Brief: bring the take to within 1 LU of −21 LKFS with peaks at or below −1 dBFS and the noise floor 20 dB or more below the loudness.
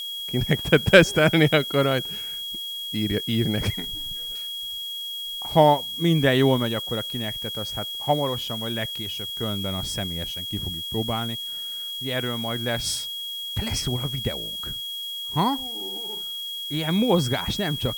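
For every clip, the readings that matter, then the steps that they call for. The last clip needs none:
interfering tone 3,300 Hz; level of the tone −30 dBFS; background noise floor −33 dBFS; target noise floor −44 dBFS; integrated loudness −24.0 LKFS; sample peak −2.0 dBFS; target loudness −21.0 LKFS
→ notch filter 3,300 Hz, Q 30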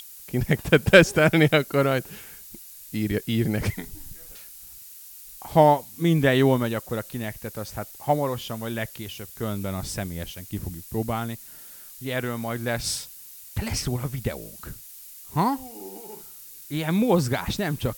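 interfering tone none found; background noise floor −44 dBFS; target noise floor −45 dBFS
→ broadband denoise 6 dB, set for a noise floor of −44 dBFS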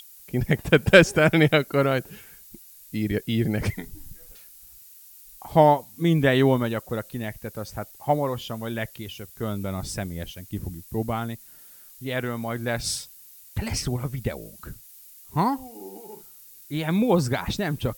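background noise floor −49 dBFS; integrated loudness −24.5 LKFS; sample peak −1.5 dBFS; target loudness −21.0 LKFS
→ level +3.5 dB
brickwall limiter −1 dBFS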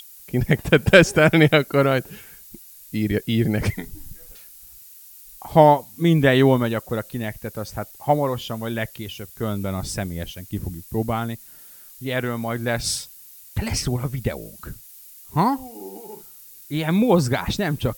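integrated loudness −21.0 LKFS; sample peak −1.0 dBFS; background noise floor −45 dBFS

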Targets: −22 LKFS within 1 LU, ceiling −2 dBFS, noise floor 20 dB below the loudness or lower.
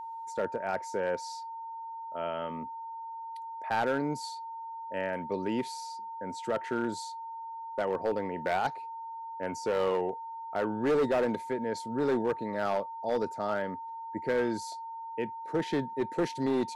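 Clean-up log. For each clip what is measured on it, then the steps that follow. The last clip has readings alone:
share of clipped samples 1.4%; peaks flattened at −22.5 dBFS; interfering tone 910 Hz; level of the tone −38 dBFS; integrated loudness −33.0 LKFS; sample peak −22.5 dBFS; target loudness −22.0 LKFS
→ clipped peaks rebuilt −22.5 dBFS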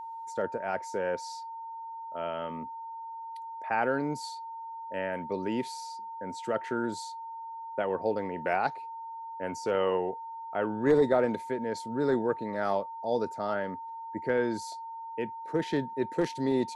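share of clipped samples 0.0%; interfering tone 910 Hz; level of the tone −38 dBFS
→ notch filter 910 Hz, Q 30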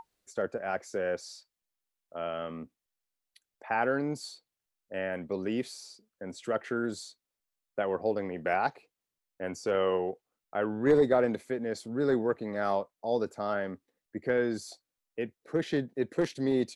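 interfering tone none found; integrated loudness −31.5 LKFS; sample peak −13.5 dBFS; target loudness −22.0 LKFS
→ level +9.5 dB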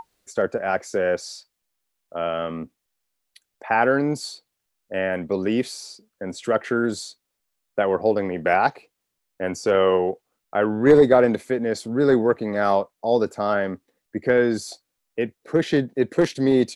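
integrated loudness −22.0 LKFS; sample peak −4.0 dBFS; background noise floor −79 dBFS

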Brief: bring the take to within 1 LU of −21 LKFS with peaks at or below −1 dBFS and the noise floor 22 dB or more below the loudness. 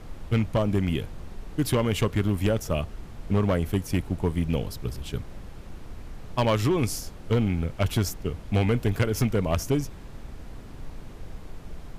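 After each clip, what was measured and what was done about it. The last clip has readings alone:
share of clipped samples 1.4%; peaks flattened at −16.5 dBFS; background noise floor −43 dBFS; target noise floor −49 dBFS; integrated loudness −26.5 LKFS; sample peak −16.5 dBFS; target loudness −21.0 LKFS
→ clipped peaks rebuilt −16.5 dBFS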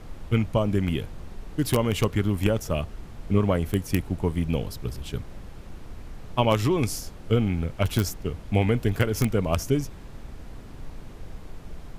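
share of clipped samples 0.0%; background noise floor −43 dBFS; target noise floor −48 dBFS
→ noise reduction from a noise print 6 dB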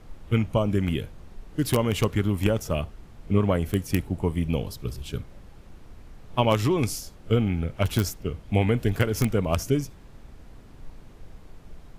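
background noise floor −48 dBFS; integrated loudness −26.0 LKFS; sample peak −7.5 dBFS; target loudness −21.0 LKFS
→ level +5 dB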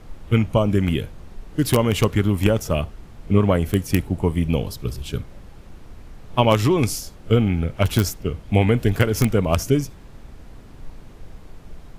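integrated loudness −21.0 LKFS; sample peak −2.5 dBFS; background noise floor −43 dBFS

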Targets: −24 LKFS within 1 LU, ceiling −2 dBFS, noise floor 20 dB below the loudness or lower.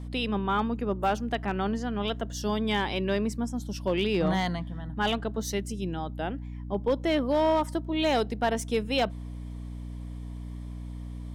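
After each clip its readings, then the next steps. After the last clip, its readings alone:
share of clipped samples 0.3%; peaks flattened at −17.5 dBFS; mains hum 60 Hz; hum harmonics up to 300 Hz; level of the hum −35 dBFS; integrated loudness −28.5 LKFS; sample peak −17.5 dBFS; target loudness −24.0 LKFS
→ clipped peaks rebuilt −17.5 dBFS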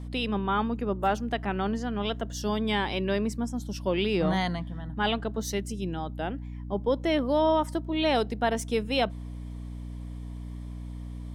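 share of clipped samples 0.0%; mains hum 60 Hz; hum harmonics up to 300 Hz; level of the hum −35 dBFS
→ hum removal 60 Hz, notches 5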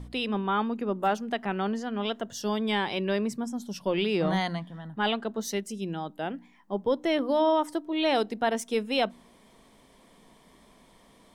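mains hum none found; integrated loudness −29.0 LKFS; sample peak −13.5 dBFS; target loudness −24.0 LKFS
→ level +5 dB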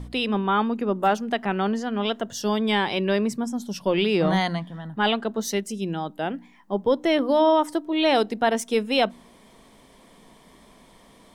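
integrated loudness −24.0 LKFS; sample peak −8.5 dBFS; background noise floor −53 dBFS

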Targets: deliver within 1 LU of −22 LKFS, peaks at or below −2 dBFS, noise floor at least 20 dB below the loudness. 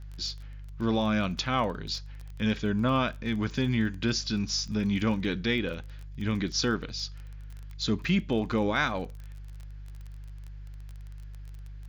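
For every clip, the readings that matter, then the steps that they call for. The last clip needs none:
crackle rate 24 per second; mains hum 50 Hz; hum harmonics up to 150 Hz; level of the hum −39 dBFS; integrated loudness −29.0 LKFS; sample peak −13.5 dBFS; target loudness −22.0 LKFS
→ click removal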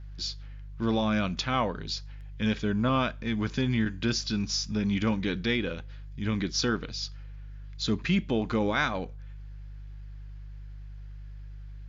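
crackle rate 0.084 per second; mains hum 50 Hz; hum harmonics up to 150 Hz; level of the hum −39 dBFS
→ hum removal 50 Hz, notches 3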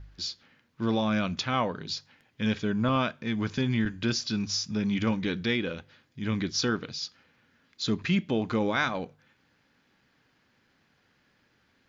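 mains hum none found; integrated loudness −29.5 LKFS; sample peak −13.5 dBFS; target loudness −22.0 LKFS
→ level +7.5 dB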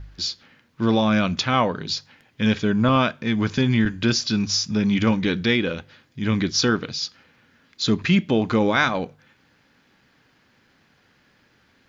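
integrated loudness −22.0 LKFS; sample peak −6.0 dBFS; background noise floor −61 dBFS

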